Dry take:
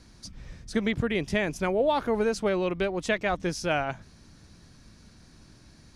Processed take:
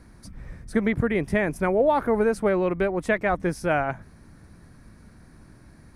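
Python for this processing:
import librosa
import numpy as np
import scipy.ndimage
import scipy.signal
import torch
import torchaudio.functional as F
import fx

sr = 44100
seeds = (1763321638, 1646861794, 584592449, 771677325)

y = fx.band_shelf(x, sr, hz=4400.0, db=-12.5, octaves=1.7)
y = y * librosa.db_to_amplitude(4.0)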